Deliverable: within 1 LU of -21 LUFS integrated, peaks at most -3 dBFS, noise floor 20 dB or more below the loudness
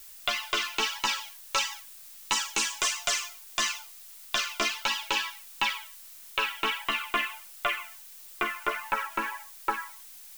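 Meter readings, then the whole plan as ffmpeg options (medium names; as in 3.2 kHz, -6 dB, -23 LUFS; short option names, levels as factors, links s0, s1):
noise floor -48 dBFS; noise floor target -50 dBFS; loudness -29.5 LUFS; peak level -12.0 dBFS; loudness target -21.0 LUFS
-> -af "afftdn=nr=6:nf=-48"
-af "volume=2.66"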